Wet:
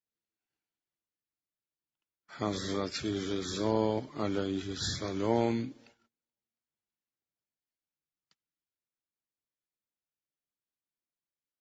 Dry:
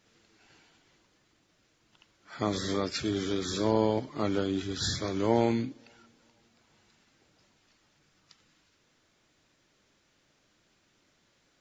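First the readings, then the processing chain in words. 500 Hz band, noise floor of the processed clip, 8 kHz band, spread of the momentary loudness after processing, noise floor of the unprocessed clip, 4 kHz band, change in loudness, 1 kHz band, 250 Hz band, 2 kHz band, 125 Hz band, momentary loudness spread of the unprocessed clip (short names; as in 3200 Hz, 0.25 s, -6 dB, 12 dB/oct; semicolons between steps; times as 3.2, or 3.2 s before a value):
-3.0 dB, under -85 dBFS, n/a, 7 LU, -70 dBFS, -3.0 dB, -3.0 dB, -3.0 dB, -3.0 dB, -3.0 dB, -3.0 dB, 7 LU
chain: gate -55 dBFS, range -31 dB; gain -3 dB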